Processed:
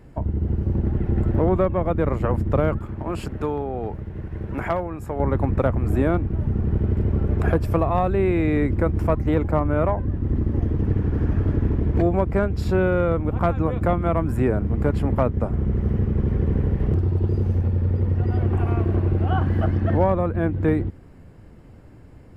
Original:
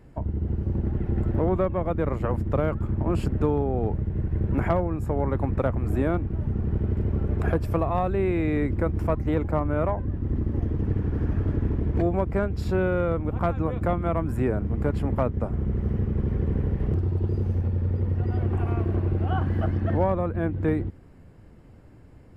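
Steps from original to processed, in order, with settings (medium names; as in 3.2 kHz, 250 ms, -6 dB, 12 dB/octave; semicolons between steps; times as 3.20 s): 2.79–5.20 s: bass shelf 450 Hz -10 dB; trim +4 dB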